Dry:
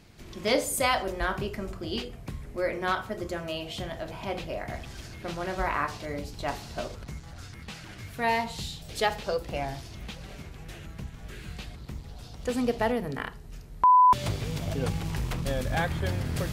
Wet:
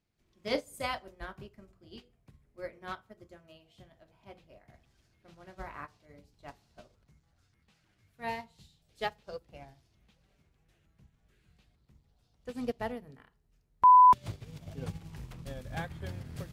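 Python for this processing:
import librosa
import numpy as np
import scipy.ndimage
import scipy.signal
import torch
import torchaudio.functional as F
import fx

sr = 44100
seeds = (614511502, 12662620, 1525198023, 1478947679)

y = fx.dynamic_eq(x, sr, hz=140.0, q=0.78, threshold_db=-42.0, ratio=4.0, max_db=4)
y = fx.upward_expand(y, sr, threshold_db=-35.0, expansion=2.5)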